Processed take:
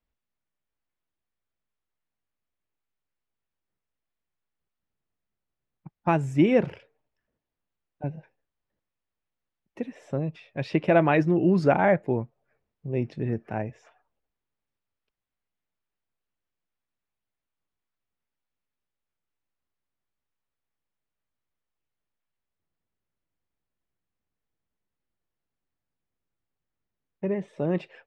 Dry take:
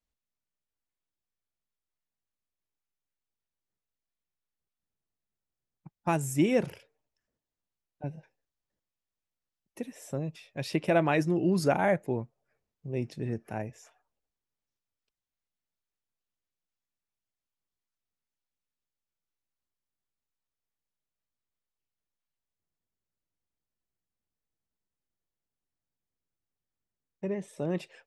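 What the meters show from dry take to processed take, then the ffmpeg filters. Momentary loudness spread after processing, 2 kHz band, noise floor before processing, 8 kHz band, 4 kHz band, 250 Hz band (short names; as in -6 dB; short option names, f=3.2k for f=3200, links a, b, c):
16 LU, +4.0 dB, under -85 dBFS, under -10 dB, -1.0 dB, +5.0 dB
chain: -af "lowpass=2.8k,volume=5dB"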